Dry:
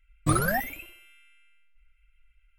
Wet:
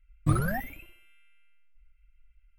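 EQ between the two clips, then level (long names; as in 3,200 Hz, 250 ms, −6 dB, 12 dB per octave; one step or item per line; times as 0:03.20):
bass and treble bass +9 dB, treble −12 dB
high-shelf EQ 8,000 Hz +11.5 dB
−6.5 dB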